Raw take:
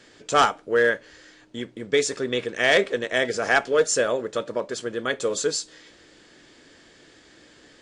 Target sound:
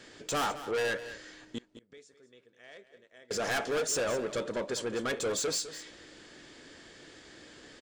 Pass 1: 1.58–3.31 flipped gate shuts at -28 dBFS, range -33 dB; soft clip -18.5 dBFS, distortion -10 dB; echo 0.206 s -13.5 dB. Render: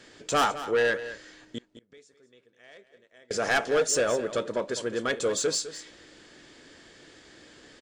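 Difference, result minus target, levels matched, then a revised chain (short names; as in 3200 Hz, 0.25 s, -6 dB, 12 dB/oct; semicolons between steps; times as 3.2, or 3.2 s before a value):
soft clip: distortion -6 dB
1.58–3.31 flipped gate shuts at -28 dBFS, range -33 dB; soft clip -28 dBFS, distortion -4 dB; echo 0.206 s -13.5 dB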